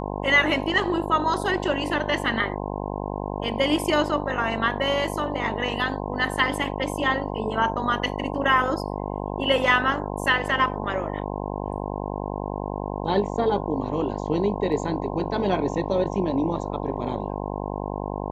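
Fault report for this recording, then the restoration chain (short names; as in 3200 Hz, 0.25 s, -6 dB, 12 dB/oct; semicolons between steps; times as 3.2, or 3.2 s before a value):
buzz 50 Hz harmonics 21 -30 dBFS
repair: de-hum 50 Hz, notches 21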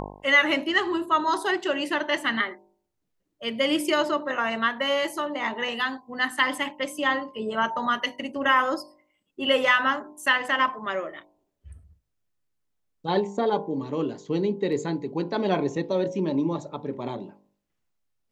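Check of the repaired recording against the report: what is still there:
none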